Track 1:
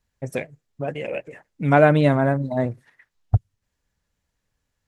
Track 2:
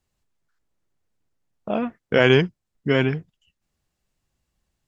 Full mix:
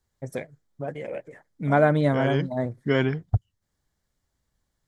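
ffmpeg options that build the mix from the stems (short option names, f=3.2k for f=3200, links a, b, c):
-filter_complex "[0:a]bandreject=f=2.8k:w=12,volume=-4.5dB,asplit=2[a][b];[1:a]volume=-2.5dB[c];[b]apad=whole_len=215125[d];[c][d]sidechaincompress=threshold=-29dB:ratio=8:attack=9:release=303[e];[a][e]amix=inputs=2:normalize=0,equalizer=f=2.6k:w=7.2:g=-12.5"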